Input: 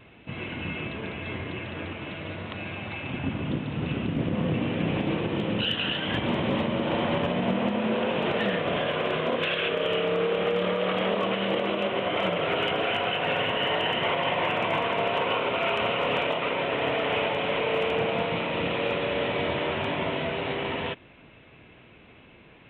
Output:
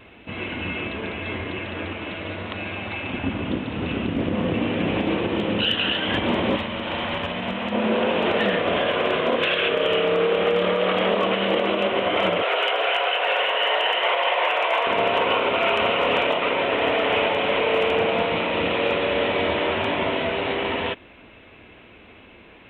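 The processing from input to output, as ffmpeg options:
-filter_complex "[0:a]asettb=1/sr,asplit=3[s0][s1][s2];[s0]atrim=end=6.564[s3];[s1]atrim=start=6.56:end=7.72,asetpts=PTS-STARTPTS,afade=t=in:d=0.004:c=qsin,afade=t=out:st=1.156:d=0.004:c=qsin,equalizer=f=370:t=o:w=2.4:g=-10[s4];[s2]atrim=start=7.716[s5];[s3][s4]acrossfade=d=0.004:c1=hsin:c2=qsin[s6];[s6][s5]acrossfade=d=0.004:c1=qsin:c2=hsin,asettb=1/sr,asplit=3[s7][s8][s9];[s7]atrim=end=12.424[s10];[s8]atrim=start=12.42:end=14.87,asetpts=PTS-STARTPTS,afade=t=in:d=0.004:c=qsin,afade=t=out:st=2.446:d=0.004:c=qsin,highpass=f=470:w=0.5412,highpass=f=470:w=1.3066[s11];[s9]atrim=start=14.866[s12];[s10][s11]acrossfade=d=0.004:c1=hsin:c2=qsin[s13];[s13][s12]acrossfade=d=0.004:c1=qsin:c2=hsin,equalizer=f=140:t=o:w=0.44:g=-13.5,volume=1.88"

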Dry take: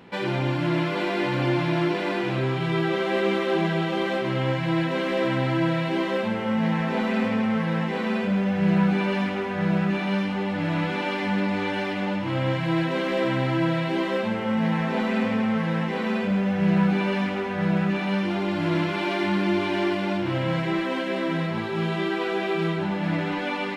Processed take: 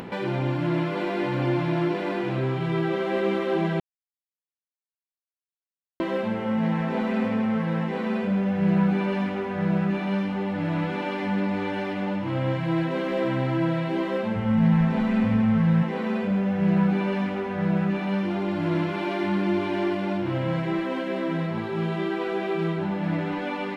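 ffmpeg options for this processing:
-filter_complex "[0:a]asplit=3[s0][s1][s2];[s0]afade=t=out:st=14.35:d=0.02[s3];[s1]asubboost=boost=8.5:cutoff=120,afade=t=in:st=14.35:d=0.02,afade=t=out:st=15.82:d=0.02[s4];[s2]afade=t=in:st=15.82:d=0.02[s5];[s3][s4][s5]amix=inputs=3:normalize=0,asplit=3[s6][s7][s8];[s6]atrim=end=3.8,asetpts=PTS-STARTPTS,afade=t=out:st=3.796:d=0.004:c=hsin[s9];[s7]atrim=start=3.8:end=6,asetpts=PTS-STARTPTS,volume=0[s10];[s8]atrim=start=6,asetpts=PTS-STARTPTS,afade=t=in:d=0.004:c=hsin[s11];[s9][s10][s11]concat=n=3:v=0:a=1,lowpass=f=1200:p=1,aemphasis=mode=production:type=50fm,acompressor=mode=upward:threshold=0.0447:ratio=2.5"

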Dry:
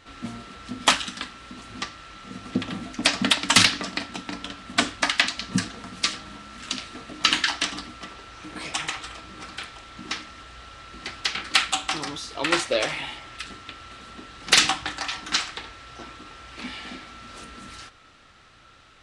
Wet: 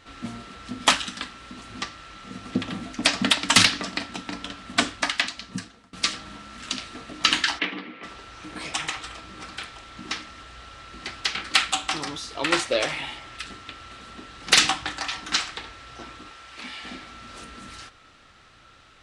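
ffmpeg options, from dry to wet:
-filter_complex "[0:a]asplit=3[s0][s1][s2];[s0]afade=t=out:st=7.58:d=0.02[s3];[s1]highpass=f=170:w=0.5412,highpass=f=170:w=1.3066,equalizer=f=180:t=q:w=4:g=4,equalizer=f=330:t=q:w=4:g=4,equalizer=f=470:t=q:w=4:g=8,equalizer=f=680:t=q:w=4:g=-4,equalizer=f=1300:t=q:w=4:g=-4,equalizer=f=2200:t=q:w=4:g=7,lowpass=f=3100:w=0.5412,lowpass=f=3100:w=1.3066,afade=t=in:st=7.58:d=0.02,afade=t=out:st=8.03:d=0.02[s4];[s2]afade=t=in:st=8.03:d=0.02[s5];[s3][s4][s5]amix=inputs=3:normalize=0,asettb=1/sr,asplit=3[s6][s7][s8];[s6]atrim=end=16.304[s9];[s7]atrim=start=16.3:end=16.84,asetpts=PTS-STARTPTS,afade=t=in:d=0.004:c=qsin,afade=t=out:st=0.536:d=0.004:c=qsin,lowshelf=f=420:g=-10[s10];[s8]atrim=start=16.836[s11];[s9][s10]acrossfade=d=0.004:c1=hsin:c2=qsin[s12];[s12][s11]acrossfade=d=0.004:c1=qsin:c2=hsin,asplit=2[s13][s14];[s13]atrim=end=5.93,asetpts=PTS-STARTPTS,afade=t=out:st=4.79:d=1.14:silence=0.0749894[s15];[s14]atrim=start=5.93,asetpts=PTS-STARTPTS,afade=t=in:d=0.004:c=hsin:silence=0.0749894[s16];[s15][s16]concat=n=2:v=0:a=1"

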